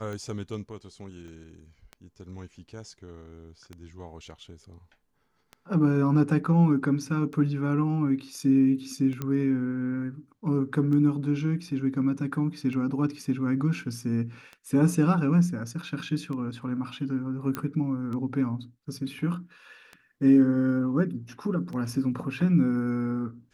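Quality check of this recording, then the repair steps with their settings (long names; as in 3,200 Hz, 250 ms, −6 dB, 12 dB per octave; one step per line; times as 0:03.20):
scratch tick 33 1/3 rpm −26 dBFS
0:01.28: click −37 dBFS
0:09.22: click −18 dBFS
0:17.55: click −16 dBFS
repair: click removal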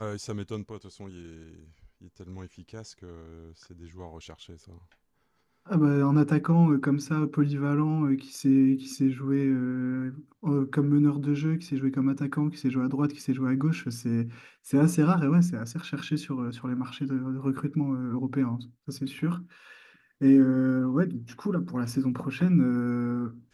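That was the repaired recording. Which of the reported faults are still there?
none of them is left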